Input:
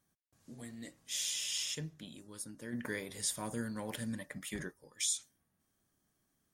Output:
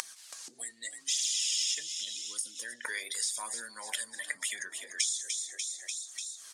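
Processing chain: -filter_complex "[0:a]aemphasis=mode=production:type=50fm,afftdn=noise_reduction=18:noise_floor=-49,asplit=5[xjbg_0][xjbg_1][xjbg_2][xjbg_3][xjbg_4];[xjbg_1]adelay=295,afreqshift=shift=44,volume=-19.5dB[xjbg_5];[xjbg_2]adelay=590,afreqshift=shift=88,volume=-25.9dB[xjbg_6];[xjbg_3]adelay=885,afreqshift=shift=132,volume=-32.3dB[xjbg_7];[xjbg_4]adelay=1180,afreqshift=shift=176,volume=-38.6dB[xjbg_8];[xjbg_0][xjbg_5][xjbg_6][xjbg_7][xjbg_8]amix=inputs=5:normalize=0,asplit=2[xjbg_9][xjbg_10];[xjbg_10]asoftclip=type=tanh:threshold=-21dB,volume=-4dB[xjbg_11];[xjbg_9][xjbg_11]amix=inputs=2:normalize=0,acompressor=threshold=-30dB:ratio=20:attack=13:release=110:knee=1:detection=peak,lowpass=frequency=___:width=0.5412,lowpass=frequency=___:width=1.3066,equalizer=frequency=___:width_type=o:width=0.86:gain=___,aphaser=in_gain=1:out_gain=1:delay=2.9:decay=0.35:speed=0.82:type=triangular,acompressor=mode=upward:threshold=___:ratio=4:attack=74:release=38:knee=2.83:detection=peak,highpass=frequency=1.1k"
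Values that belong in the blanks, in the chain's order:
8.7k, 8.7k, 4.5k, 4.5, -38dB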